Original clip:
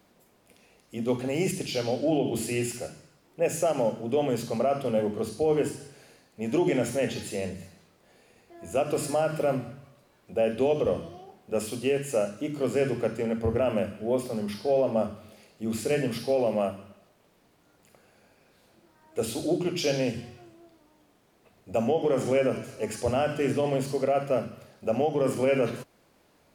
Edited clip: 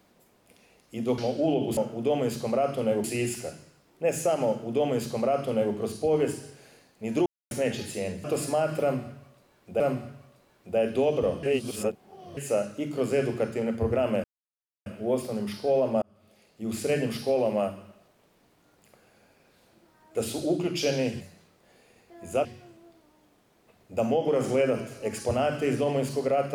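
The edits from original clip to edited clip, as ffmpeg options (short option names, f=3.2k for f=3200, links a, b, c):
-filter_complex "[0:a]asplit=14[a][b][c][d][e][f][g][h][i][j][k][l][m][n];[a]atrim=end=1.182[o];[b]atrim=start=1.818:end=2.412[p];[c]atrim=start=3.838:end=5.112[q];[d]atrim=start=2.408:end=6.63,asetpts=PTS-STARTPTS,afade=t=out:st=4.218:d=0.004:c=hsin[r];[e]atrim=start=6.63:end=6.88,asetpts=PTS-STARTPTS,volume=0[s];[f]atrim=start=6.88:end=7.612,asetpts=PTS-STARTPTS,afade=t=in:d=0.004:c=hsin[t];[g]atrim=start=8.848:end=10.412[u];[h]atrim=start=9.428:end=11.062[v];[i]atrim=start=11.058:end=12.002,asetpts=PTS-STARTPTS,areverse[w];[j]atrim=start=11.998:end=13.87,asetpts=PTS-STARTPTS,afade=t=out:st=1.868:d=0.004:c=hsin,apad=pad_dur=0.62[x];[k]atrim=start=13.87:end=15.03,asetpts=PTS-STARTPTS,afade=t=in:d=0.004:c=hsin,afade=t=out:st=1.156:d=0.004:c=hsin[y];[l]atrim=start=15.03:end=20.222,asetpts=PTS-STARTPTS,afade=t=in:d=0.81[z];[m]atrim=start=7.608:end=8.852[aa];[n]atrim=start=20.218[ab];[o][p]acrossfade=d=0.004:c1=hsin:c2=hsin[ac];[ac][q]acrossfade=d=0.004:c1=hsin:c2=hsin[ad];[r][s][t]concat=n=3:v=0:a=1[ae];[ad][ae]acrossfade=d=0.004:c1=hsin:c2=hsin[af];[af][u]acrossfade=d=0.004:c1=hsin:c2=hsin[ag];[ag][v]acrossfade=d=0.004:c1=hsin:c2=hsin[ah];[ah][w]acrossfade=d=0.004:c1=hsin:c2=hsin[ai];[x][y][z]concat=n=3:v=0:a=1[aj];[ai][aj]acrossfade=d=0.004:c1=hsin:c2=hsin[ak];[ak][aa]acrossfade=d=0.004:c1=hsin:c2=hsin[al];[al][ab]acrossfade=d=0.004:c1=hsin:c2=hsin"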